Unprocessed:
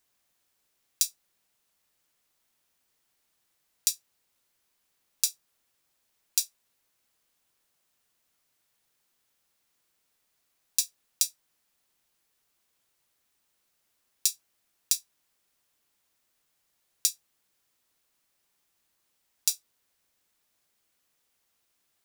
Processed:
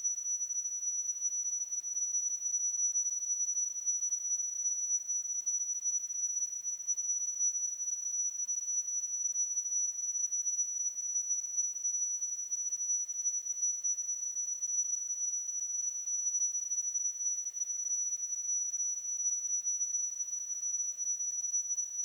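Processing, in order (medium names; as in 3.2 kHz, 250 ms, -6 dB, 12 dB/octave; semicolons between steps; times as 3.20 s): square wave that keeps the level; whistle 5.9 kHz -37 dBFS; Paulstretch 18×, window 0.10 s, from 2.20 s; trim +5 dB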